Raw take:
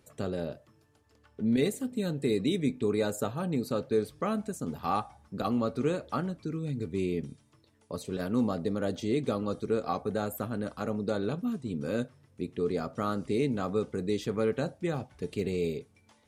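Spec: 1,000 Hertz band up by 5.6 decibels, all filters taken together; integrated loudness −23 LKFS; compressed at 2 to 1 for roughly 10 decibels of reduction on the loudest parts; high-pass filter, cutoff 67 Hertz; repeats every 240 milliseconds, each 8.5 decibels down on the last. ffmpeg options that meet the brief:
ffmpeg -i in.wav -af "highpass=67,equalizer=frequency=1000:width_type=o:gain=7.5,acompressor=threshold=-39dB:ratio=2,aecho=1:1:240|480|720|960:0.376|0.143|0.0543|0.0206,volume=15dB" out.wav

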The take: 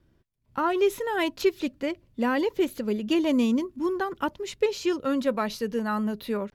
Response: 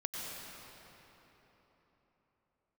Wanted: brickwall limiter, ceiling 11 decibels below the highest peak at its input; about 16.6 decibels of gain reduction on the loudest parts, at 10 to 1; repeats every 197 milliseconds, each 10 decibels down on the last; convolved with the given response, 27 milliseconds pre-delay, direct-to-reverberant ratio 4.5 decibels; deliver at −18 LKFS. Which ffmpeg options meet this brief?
-filter_complex "[0:a]acompressor=threshold=-35dB:ratio=10,alimiter=level_in=8dB:limit=-24dB:level=0:latency=1,volume=-8dB,aecho=1:1:197|394|591|788:0.316|0.101|0.0324|0.0104,asplit=2[link_01][link_02];[1:a]atrim=start_sample=2205,adelay=27[link_03];[link_02][link_03]afir=irnorm=-1:irlink=0,volume=-7dB[link_04];[link_01][link_04]amix=inputs=2:normalize=0,volume=21.5dB"

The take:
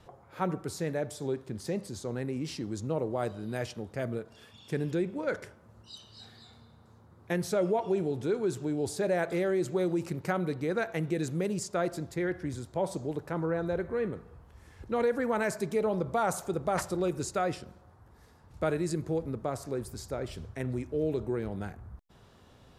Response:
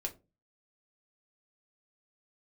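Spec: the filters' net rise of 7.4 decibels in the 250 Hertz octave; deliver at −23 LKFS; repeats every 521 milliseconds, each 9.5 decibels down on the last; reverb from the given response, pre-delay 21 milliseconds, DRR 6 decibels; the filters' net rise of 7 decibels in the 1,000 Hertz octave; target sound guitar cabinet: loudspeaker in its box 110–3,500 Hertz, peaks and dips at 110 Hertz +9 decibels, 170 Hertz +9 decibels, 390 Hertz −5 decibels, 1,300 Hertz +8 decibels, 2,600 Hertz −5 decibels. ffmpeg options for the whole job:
-filter_complex "[0:a]equalizer=frequency=250:width_type=o:gain=7.5,equalizer=frequency=1000:width_type=o:gain=6,aecho=1:1:521|1042|1563|2084:0.335|0.111|0.0365|0.012,asplit=2[link_01][link_02];[1:a]atrim=start_sample=2205,adelay=21[link_03];[link_02][link_03]afir=irnorm=-1:irlink=0,volume=-6.5dB[link_04];[link_01][link_04]amix=inputs=2:normalize=0,highpass=110,equalizer=frequency=110:width_type=q:width=4:gain=9,equalizer=frequency=170:width_type=q:width=4:gain=9,equalizer=frequency=390:width_type=q:width=4:gain=-5,equalizer=frequency=1300:width_type=q:width=4:gain=8,equalizer=frequency=2600:width_type=q:width=4:gain=-5,lowpass=frequency=3500:width=0.5412,lowpass=frequency=3500:width=1.3066,volume=3dB"

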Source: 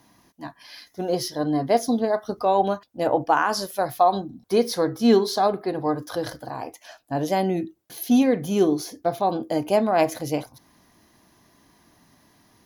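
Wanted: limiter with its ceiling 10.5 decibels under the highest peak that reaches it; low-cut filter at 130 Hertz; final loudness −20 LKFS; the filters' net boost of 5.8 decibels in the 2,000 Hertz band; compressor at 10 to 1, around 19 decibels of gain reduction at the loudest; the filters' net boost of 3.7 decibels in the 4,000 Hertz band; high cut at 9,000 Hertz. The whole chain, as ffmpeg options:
ffmpeg -i in.wav -af "highpass=130,lowpass=9000,equalizer=frequency=2000:width_type=o:gain=7.5,equalizer=frequency=4000:width_type=o:gain=3,acompressor=threshold=-33dB:ratio=10,volume=20.5dB,alimiter=limit=-9dB:level=0:latency=1" out.wav

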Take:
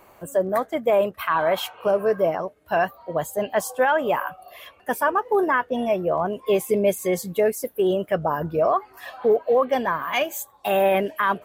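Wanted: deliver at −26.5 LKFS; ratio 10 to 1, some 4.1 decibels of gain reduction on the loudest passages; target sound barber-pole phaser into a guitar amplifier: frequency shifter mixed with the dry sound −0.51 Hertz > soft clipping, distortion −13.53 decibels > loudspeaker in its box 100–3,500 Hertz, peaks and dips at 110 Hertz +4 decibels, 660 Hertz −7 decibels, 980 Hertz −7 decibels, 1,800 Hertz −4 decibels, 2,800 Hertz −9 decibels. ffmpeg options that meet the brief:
ffmpeg -i in.wav -filter_complex "[0:a]acompressor=threshold=-19dB:ratio=10,asplit=2[link_01][link_02];[link_02]afreqshift=-0.51[link_03];[link_01][link_03]amix=inputs=2:normalize=1,asoftclip=threshold=-23dB,highpass=100,equalizer=frequency=110:width_type=q:width=4:gain=4,equalizer=frequency=660:width_type=q:width=4:gain=-7,equalizer=frequency=980:width_type=q:width=4:gain=-7,equalizer=frequency=1800:width_type=q:width=4:gain=-4,equalizer=frequency=2800:width_type=q:width=4:gain=-9,lowpass=frequency=3500:width=0.5412,lowpass=frequency=3500:width=1.3066,volume=7.5dB" out.wav

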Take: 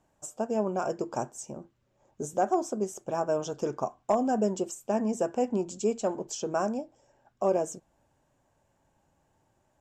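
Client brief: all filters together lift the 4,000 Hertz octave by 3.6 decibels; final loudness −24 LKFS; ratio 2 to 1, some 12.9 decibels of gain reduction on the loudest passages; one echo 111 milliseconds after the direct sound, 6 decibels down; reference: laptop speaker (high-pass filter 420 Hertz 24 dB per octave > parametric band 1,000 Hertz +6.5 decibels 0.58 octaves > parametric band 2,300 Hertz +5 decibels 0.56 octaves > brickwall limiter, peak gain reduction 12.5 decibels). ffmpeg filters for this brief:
ffmpeg -i in.wav -af "equalizer=frequency=4000:width_type=o:gain=4.5,acompressor=threshold=-46dB:ratio=2,highpass=frequency=420:width=0.5412,highpass=frequency=420:width=1.3066,equalizer=frequency=1000:width_type=o:width=0.58:gain=6.5,equalizer=frequency=2300:width_type=o:width=0.56:gain=5,aecho=1:1:111:0.501,volume=22dB,alimiter=limit=-14dB:level=0:latency=1" out.wav

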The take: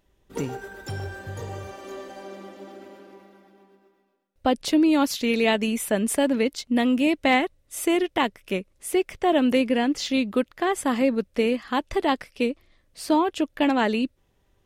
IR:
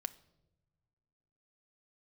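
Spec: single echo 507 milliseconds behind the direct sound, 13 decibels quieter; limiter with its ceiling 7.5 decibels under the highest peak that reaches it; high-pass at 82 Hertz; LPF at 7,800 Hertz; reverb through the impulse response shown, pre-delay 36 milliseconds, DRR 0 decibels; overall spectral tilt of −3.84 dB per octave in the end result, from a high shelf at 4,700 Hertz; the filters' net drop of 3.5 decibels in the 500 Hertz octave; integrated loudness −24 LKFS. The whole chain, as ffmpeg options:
-filter_complex "[0:a]highpass=82,lowpass=7800,equalizer=frequency=500:width_type=o:gain=-4.5,highshelf=frequency=4700:gain=3.5,alimiter=limit=-16dB:level=0:latency=1,aecho=1:1:507:0.224,asplit=2[link_01][link_02];[1:a]atrim=start_sample=2205,adelay=36[link_03];[link_02][link_03]afir=irnorm=-1:irlink=0,volume=2dB[link_04];[link_01][link_04]amix=inputs=2:normalize=0,volume=-1dB"

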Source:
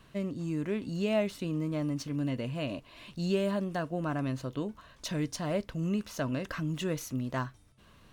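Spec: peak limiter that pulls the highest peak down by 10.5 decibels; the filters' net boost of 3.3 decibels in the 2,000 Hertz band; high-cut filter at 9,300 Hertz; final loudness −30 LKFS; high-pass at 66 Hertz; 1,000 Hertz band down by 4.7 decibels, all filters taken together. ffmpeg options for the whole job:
ffmpeg -i in.wav -af "highpass=66,lowpass=9300,equalizer=frequency=1000:width_type=o:gain=-8.5,equalizer=frequency=2000:width_type=o:gain=7,volume=7.5dB,alimiter=limit=-21dB:level=0:latency=1" out.wav

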